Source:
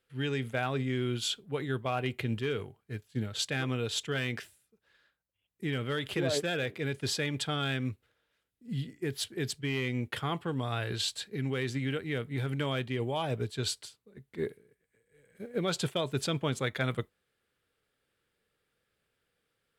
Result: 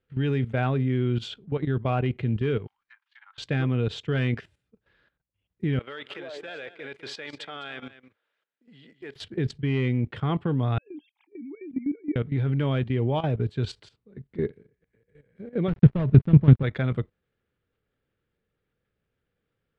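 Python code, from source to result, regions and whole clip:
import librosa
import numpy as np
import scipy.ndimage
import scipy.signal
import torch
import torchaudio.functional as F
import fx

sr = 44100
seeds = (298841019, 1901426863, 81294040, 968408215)

y = fx.chain(x, sr, fx.steep_highpass(hz=900.0, slope=72),
    fx.env_lowpass_down(base_hz=1200.0, full_db=-48.0),
    fx.resample_bad(factor=3, down='none', up='filtered'), at=(2.67, 3.38))
y = fx.chain(y, sr, fx.highpass(hz=660.0, slope=12),
    fx.echo_single(ms=205, db=-13.5), at=(5.79, 9.16))
y = fx.chain(y, sr, fx.sine_speech(),
    fx.vowel_filter(vowel='u'), at=(10.78, 12.16))
y = fx.chain(y, sr, fx.dead_time(dead_ms=0.2),
    fx.bass_treble(bass_db=11, treble_db=-13), at=(15.68, 16.63))
y = scipy.signal.sosfilt(scipy.signal.butter(2, 3200.0, 'lowpass', fs=sr, output='sos'), y)
y = fx.low_shelf(y, sr, hz=380.0, db=11.5)
y = fx.level_steps(y, sr, step_db=14)
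y = y * librosa.db_to_amplitude(4.0)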